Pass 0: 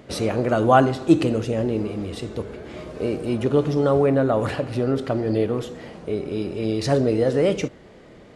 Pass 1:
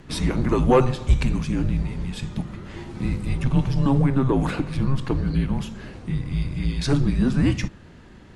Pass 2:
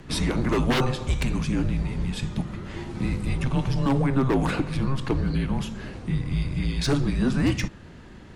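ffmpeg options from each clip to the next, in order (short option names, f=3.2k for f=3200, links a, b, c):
-af "afreqshift=-270,acontrast=64,volume=-5.5dB"
-filter_complex "[0:a]acrossover=split=340[a][b];[a]alimiter=limit=-18.5dB:level=0:latency=1:release=170[c];[b]aeval=exprs='0.0891*(abs(mod(val(0)/0.0891+3,4)-2)-1)':c=same[d];[c][d]amix=inputs=2:normalize=0,volume=1.5dB"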